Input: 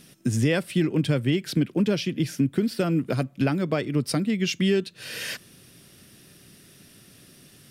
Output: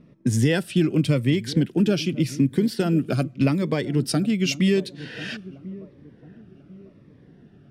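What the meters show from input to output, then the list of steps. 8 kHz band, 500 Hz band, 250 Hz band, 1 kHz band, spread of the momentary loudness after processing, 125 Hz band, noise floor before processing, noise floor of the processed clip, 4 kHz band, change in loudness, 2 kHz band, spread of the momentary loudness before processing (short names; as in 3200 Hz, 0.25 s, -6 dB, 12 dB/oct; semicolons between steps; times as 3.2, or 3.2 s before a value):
+2.0 dB, +1.5 dB, +3.0 dB, 0.0 dB, 13 LU, +3.0 dB, -53 dBFS, -53 dBFS, +1.5 dB, +2.5 dB, +0.5 dB, 7 LU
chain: low-pass opened by the level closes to 1000 Hz, open at -21.5 dBFS; dark delay 1.045 s, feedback 32%, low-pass 770 Hz, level -16 dB; cascading phaser falling 0.87 Hz; gain +3 dB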